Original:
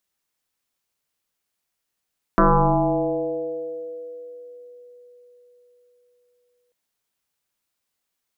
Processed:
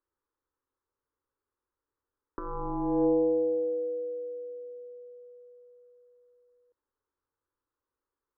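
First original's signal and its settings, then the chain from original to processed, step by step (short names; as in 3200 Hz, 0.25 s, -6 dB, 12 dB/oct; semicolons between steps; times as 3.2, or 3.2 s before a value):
FM tone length 4.34 s, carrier 489 Hz, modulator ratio 0.35, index 5.3, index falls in 3.55 s exponential, decay 4.61 s, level -11 dB
LPF 1100 Hz 12 dB/oct; negative-ratio compressor -23 dBFS, ratio -0.5; fixed phaser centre 690 Hz, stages 6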